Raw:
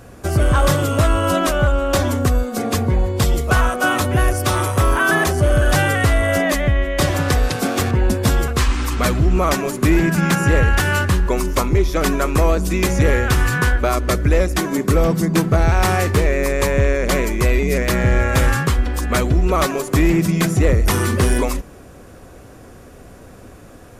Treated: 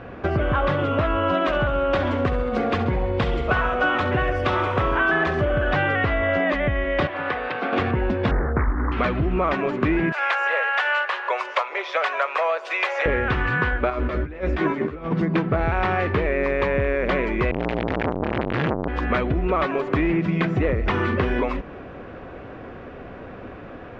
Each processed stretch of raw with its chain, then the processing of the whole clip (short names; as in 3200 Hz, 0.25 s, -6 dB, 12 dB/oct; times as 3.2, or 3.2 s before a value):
1.33–5.45 high shelf 5200 Hz +7 dB + feedback echo 67 ms, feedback 58%, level -11.5 dB
7.07–7.73 HPF 1100 Hz 6 dB/oct + tape spacing loss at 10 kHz 22 dB
8.31–8.92 brick-wall FIR low-pass 2000 Hz + tilt -1.5 dB/oct + Doppler distortion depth 0.66 ms
10.12–13.06 steep high-pass 550 Hz + high shelf 6200 Hz +11 dB
13.9–15.12 negative-ratio compressor -22 dBFS, ratio -0.5 + doubler 13 ms -4.5 dB
17.51–18.88 infinite clipping + bell 83 Hz +11 dB 0.98 oct + core saturation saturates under 610 Hz
whole clip: LPF 2900 Hz 24 dB/oct; low shelf 150 Hz -9 dB; compressor 3:1, threshold -27 dBFS; gain +6 dB